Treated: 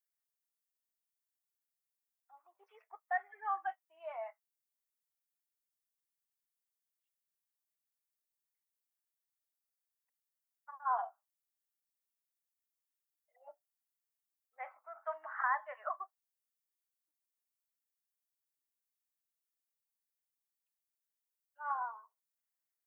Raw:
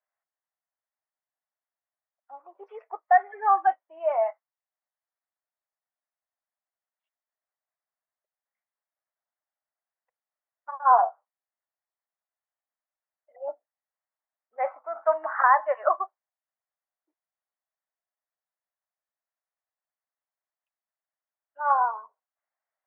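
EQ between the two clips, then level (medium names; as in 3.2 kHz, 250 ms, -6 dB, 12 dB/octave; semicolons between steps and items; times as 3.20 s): differentiator; band-stop 550 Hz, Q 12; +2.0 dB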